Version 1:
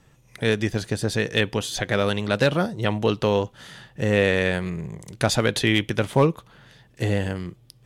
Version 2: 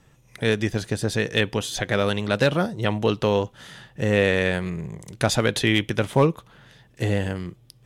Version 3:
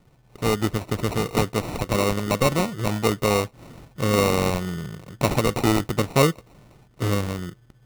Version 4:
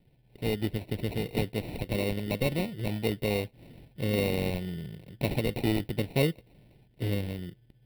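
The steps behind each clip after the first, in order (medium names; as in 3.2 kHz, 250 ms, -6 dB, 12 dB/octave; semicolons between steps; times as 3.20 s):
band-stop 4.5 kHz, Q 25
sample-and-hold 27×
static phaser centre 2.9 kHz, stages 4; trim -6 dB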